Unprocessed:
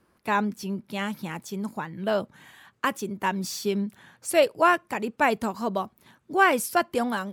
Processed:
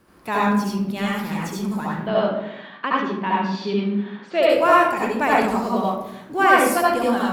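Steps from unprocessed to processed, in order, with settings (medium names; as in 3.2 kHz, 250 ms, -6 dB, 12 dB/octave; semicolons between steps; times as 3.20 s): companding laws mixed up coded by mu; 2.00–4.43 s: elliptic band-pass 190–3800 Hz, stop band 50 dB; reverberation RT60 0.85 s, pre-delay 64 ms, DRR -5.5 dB; trim -1.5 dB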